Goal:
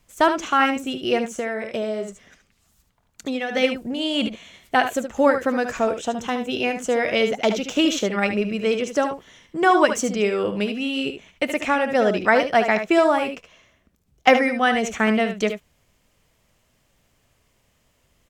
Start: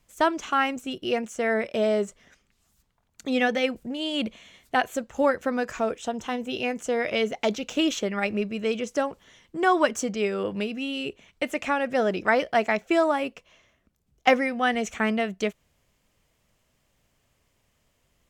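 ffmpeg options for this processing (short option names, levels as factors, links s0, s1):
-filter_complex "[0:a]aecho=1:1:63|74:0.133|0.355,asplit=3[s0][s1][s2];[s0]afade=t=out:st=1.28:d=0.02[s3];[s1]acompressor=threshold=0.0398:ratio=6,afade=t=in:st=1.28:d=0.02,afade=t=out:st=3.55:d=0.02[s4];[s2]afade=t=in:st=3.55:d=0.02[s5];[s3][s4][s5]amix=inputs=3:normalize=0,volume=1.68"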